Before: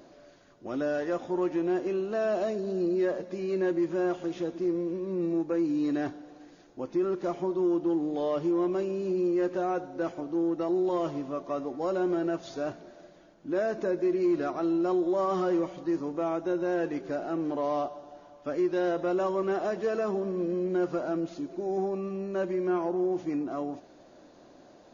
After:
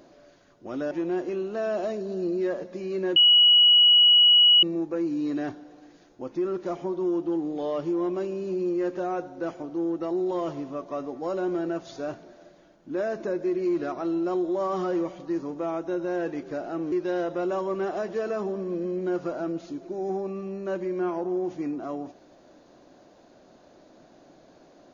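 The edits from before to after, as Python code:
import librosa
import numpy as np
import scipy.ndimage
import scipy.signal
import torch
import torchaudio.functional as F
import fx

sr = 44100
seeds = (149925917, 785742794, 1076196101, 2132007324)

y = fx.edit(x, sr, fx.cut(start_s=0.91, length_s=0.58),
    fx.bleep(start_s=3.74, length_s=1.47, hz=2920.0, db=-13.0),
    fx.cut(start_s=17.5, length_s=1.1), tone=tone)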